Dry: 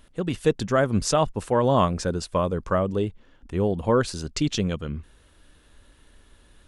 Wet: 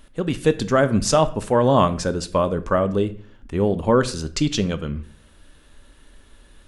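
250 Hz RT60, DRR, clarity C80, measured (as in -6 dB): 0.65 s, 11.0 dB, 20.0 dB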